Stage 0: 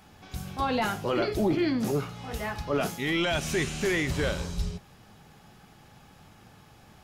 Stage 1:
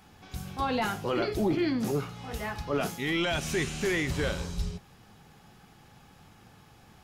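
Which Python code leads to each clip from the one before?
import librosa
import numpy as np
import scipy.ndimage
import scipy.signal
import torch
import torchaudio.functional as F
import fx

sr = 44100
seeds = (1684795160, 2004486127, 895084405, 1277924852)

y = fx.notch(x, sr, hz=610.0, q=14.0)
y = y * librosa.db_to_amplitude(-1.5)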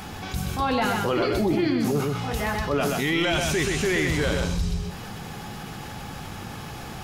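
y = x + 10.0 ** (-5.5 / 20.0) * np.pad(x, (int(127 * sr / 1000.0), 0))[:len(x)]
y = fx.env_flatten(y, sr, amount_pct=50)
y = y * librosa.db_to_amplitude(2.5)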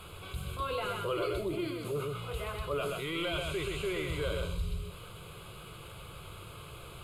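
y = fx.delta_mod(x, sr, bps=64000, step_db=-36.0)
y = fx.fixed_phaser(y, sr, hz=1200.0, stages=8)
y = y * librosa.db_to_amplitude(-7.0)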